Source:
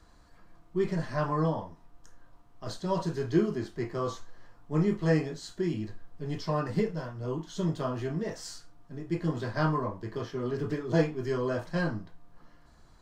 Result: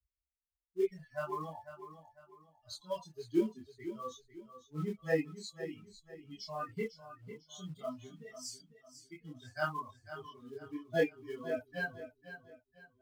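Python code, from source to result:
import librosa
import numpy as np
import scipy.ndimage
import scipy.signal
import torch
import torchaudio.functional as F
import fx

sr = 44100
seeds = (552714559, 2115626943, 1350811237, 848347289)

p1 = fx.bin_expand(x, sr, power=3.0)
p2 = fx.highpass(p1, sr, hz=440.0, slope=6)
p3 = fx.peak_eq(p2, sr, hz=920.0, db=-11.5, octaves=0.21)
p4 = fx.quant_float(p3, sr, bits=2)
p5 = p3 + (p4 * librosa.db_to_amplitude(-7.0))
p6 = fx.chorus_voices(p5, sr, voices=6, hz=0.18, base_ms=24, depth_ms=3.3, mix_pct=50)
p7 = fx.echo_feedback(p6, sr, ms=499, feedback_pct=34, wet_db=-12.0)
y = p7 * librosa.db_to_amplitude(3.0)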